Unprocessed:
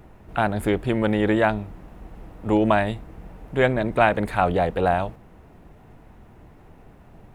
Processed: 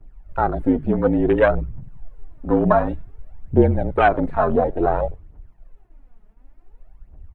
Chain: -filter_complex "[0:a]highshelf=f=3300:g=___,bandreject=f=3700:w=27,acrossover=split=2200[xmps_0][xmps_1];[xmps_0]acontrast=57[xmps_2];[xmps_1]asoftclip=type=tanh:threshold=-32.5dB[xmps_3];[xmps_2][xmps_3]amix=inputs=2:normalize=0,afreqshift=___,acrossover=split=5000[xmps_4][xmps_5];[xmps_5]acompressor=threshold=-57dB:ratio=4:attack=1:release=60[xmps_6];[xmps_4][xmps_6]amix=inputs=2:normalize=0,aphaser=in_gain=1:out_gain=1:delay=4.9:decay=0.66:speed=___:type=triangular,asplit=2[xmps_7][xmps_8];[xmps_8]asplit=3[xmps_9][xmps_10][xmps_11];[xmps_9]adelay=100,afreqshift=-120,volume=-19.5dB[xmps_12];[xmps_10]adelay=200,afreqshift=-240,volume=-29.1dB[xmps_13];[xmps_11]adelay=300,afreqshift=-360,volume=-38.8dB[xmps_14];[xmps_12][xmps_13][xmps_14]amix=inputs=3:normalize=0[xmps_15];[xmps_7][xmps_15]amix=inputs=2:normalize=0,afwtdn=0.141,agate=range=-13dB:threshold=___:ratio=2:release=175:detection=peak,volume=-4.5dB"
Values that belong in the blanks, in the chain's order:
3.5, -39, 0.56, -41dB